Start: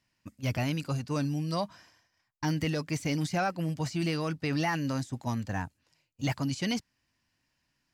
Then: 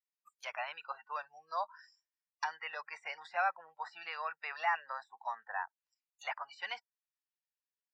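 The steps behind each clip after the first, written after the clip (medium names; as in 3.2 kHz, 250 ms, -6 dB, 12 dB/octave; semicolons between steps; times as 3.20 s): low-pass that closes with the level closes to 1.8 kHz, closed at -31 dBFS; inverse Chebyshev high-pass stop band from 310 Hz, stop band 50 dB; spectral noise reduction 29 dB; trim +2.5 dB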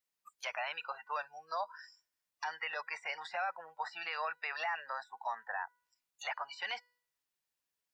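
dynamic bell 1.1 kHz, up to -4 dB, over -50 dBFS, Q 2.2; peak limiter -34 dBFS, peak gain reduction 11.5 dB; feedback comb 490 Hz, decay 0.6 s, mix 30%; trim +9.5 dB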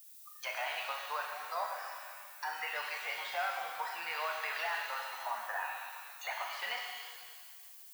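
added noise violet -55 dBFS; pitch-shifted reverb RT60 1.8 s, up +7 st, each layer -8 dB, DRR 0 dB; trim -1.5 dB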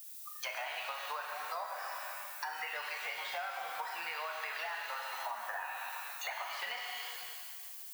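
compression, threshold -43 dBFS, peak gain reduction 11.5 dB; trim +6 dB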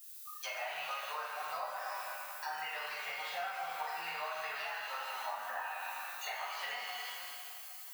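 shuffle delay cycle 793 ms, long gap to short 1.5:1, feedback 31%, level -15.5 dB; simulated room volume 60 m³, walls mixed, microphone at 1.2 m; trim -6.5 dB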